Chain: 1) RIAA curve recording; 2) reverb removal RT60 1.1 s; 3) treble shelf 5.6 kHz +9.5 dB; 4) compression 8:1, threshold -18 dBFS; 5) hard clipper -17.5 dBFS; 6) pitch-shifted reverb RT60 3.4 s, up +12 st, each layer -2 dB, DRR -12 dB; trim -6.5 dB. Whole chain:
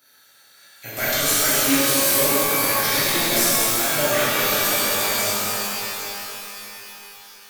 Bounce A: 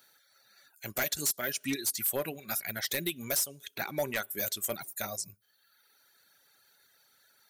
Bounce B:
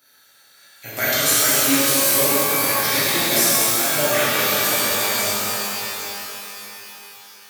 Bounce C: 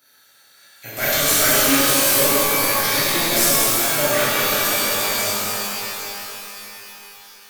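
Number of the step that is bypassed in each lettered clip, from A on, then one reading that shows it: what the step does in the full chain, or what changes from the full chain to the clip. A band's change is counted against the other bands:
6, 1 kHz band -4.5 dB; 5, distortion -11 dB; 4, mean gain reduction 2.0 dB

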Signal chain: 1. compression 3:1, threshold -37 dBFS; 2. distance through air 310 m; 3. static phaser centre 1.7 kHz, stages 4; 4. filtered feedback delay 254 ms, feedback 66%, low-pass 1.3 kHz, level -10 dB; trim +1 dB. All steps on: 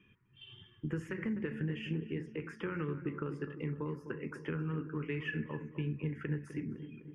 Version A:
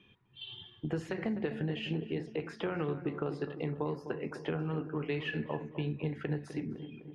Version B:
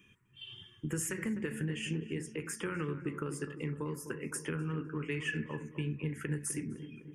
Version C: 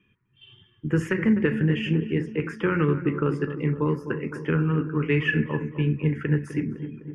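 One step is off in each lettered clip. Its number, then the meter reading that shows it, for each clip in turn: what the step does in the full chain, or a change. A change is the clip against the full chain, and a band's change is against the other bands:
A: 3, crest factor change +1.5 dB; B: 2, 2 kHz band +2.5 dB; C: 1, mean gain reduction 11.5 dB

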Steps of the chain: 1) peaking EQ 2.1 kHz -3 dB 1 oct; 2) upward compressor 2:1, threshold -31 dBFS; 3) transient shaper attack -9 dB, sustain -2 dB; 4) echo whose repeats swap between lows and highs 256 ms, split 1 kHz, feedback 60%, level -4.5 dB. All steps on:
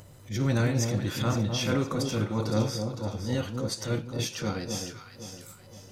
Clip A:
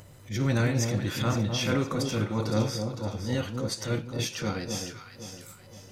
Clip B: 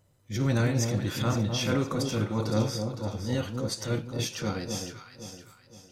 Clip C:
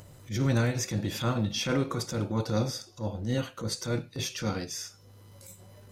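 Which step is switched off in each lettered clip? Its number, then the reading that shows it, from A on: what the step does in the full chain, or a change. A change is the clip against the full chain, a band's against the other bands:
1, 2 kHz band +2.0 dB; 2, momentary loudness spread change -3 LU; 4, echo-to-direct -6.5 dB to none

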